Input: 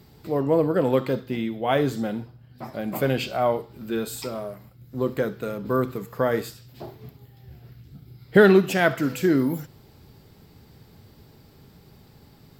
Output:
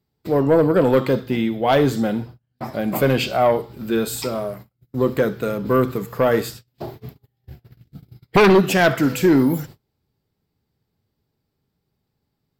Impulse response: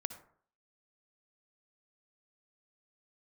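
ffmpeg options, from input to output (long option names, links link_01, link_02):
-af "agate=range=-30dB:threshold=-43dB:ratio=16:detection=peak,aeval=exprs='0.841*sin(PI/2*3.16*val(0)/0.841)':channel_layout=same,volume=-7dB"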